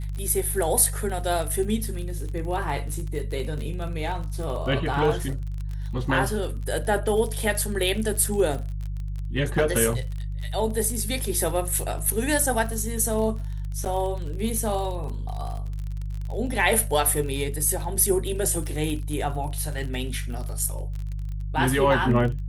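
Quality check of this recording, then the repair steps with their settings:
crackle 36 per s -31 dBFS
hum 50 Hz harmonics 3 -30 dBFS
13.85–13.86 s: dropout 8.1 ms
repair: de-click; de-hum 50 Hz, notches 3; interpolate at 13.85 s, 8.1 ms

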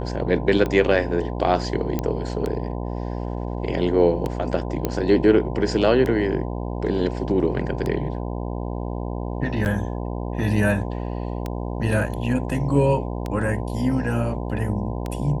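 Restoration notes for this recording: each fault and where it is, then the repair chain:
buzz 60 Hz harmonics 17 -28 dBFS
tick 33 1/3 rpm -14 dBFS
1.99 s: pop -11 dBFS
4.85 s: pop -9 dBFS
9.65–9.66 s: dropout 6.8 ms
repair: de-click; de-hum 60 Hz, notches 17; interpolate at 9.65 s, 6.8 ms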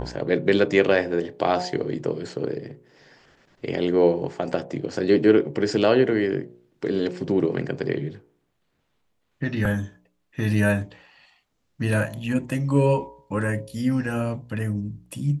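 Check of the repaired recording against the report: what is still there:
nothing left

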